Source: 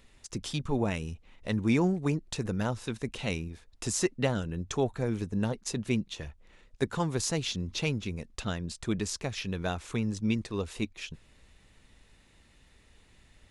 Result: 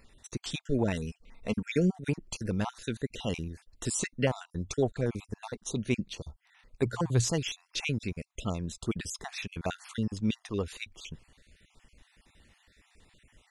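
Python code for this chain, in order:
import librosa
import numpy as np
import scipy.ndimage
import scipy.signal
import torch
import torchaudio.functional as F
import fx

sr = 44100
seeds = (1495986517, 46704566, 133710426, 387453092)

y = fx.spec_dropout(x, sr, seeds[0], share_pct=39)
y = fx.comb(y, sr, ms=4.4, depth=0.47, at=(0.94, 2.02), fade=0.02)
y = fx.peak_eq(y, sr, hz=120.0, db=12.0, octaves=0.35, at=(6.85, 7.31), fade=0.02)
y = y * librosa.db_to_amplitude(1.0)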